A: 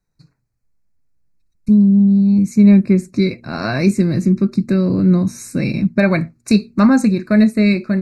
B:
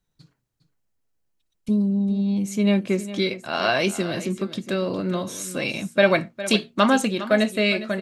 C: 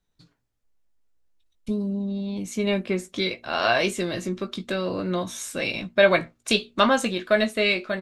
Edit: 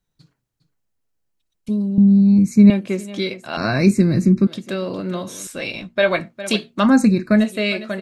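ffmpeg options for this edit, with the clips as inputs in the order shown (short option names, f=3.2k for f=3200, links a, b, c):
-filter_complex "[0:a]asplit=3[a][b][c];[1:a]asplit=5[d][e][f][g][h];[d]atrim=end=1.982[i];[a]atrim=start=1.978:end=2.702[j];[e]atrim=start=2.698:end=3.572[k];[b]atrim=start=3.568:end=4.472[l];[f]atrim=start=4.468:end=5.472[m];[2:a]atrim=start=5.468:end=6.202[n];[g]atrim=start=6.198:end=6.94[o];[c]atrim=start=6.78:end=7.49[p];[h]atrim=start=7.33[q];[i][j]acrossfade=d=0.004:c1=hsin:c2=hsin[r];[r][k]acrossfade=d=0.004:c1=hsin:c2=hsin[s];[s][l]acrossfade=d=0.004:c1=hsin:c2=hsin[t];[t][m]acrossfade=d=0.004:c1=hsin:c2=hsin[u];[u][n]acrossfade=d=0.004:c1=hsin:c2=hsin[v];[v][o]acrossfade=d=0.004:c1=hsin:c2=hsin[w];[w][p]acrossfade=d=0.16:c1=tri:c2=tri[x];[x][q]acrossfade=d=0.16:c1=tri:c2=tri"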